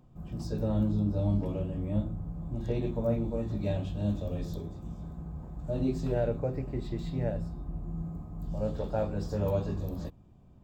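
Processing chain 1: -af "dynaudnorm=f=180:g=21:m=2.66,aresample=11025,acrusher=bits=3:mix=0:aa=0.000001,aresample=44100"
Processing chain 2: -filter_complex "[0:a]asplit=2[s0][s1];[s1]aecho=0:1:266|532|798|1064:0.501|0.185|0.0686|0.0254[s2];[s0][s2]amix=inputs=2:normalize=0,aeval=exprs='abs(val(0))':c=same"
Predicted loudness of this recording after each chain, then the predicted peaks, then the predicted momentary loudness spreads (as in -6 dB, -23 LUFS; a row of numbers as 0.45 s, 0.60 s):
-24.5 LUFS, -36.0 LUFS; -7.0 dBFS, -15.5 dBFS; 14 LU, 11 LU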